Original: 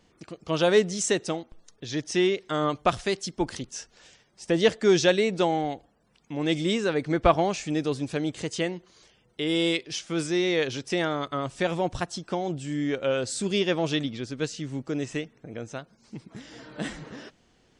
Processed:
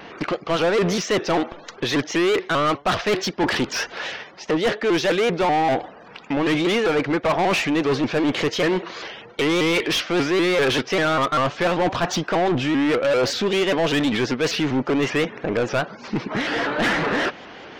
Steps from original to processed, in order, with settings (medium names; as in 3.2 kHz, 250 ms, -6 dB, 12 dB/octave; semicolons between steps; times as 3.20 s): steep low-pass 6.5 kHz 48 dB/octave; tone controls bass -2 dB, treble -13 dB; reverse; compression 12:1, threshold -33 dBFS, peak gain reduction 19 dB; reverse; overdrive pedal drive 28 dB, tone 3.4 kHz, clips at -20 dBFS; vibrato with a chosen wave saw up 5.1 Hz, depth 160 cents; trim +8.5 dB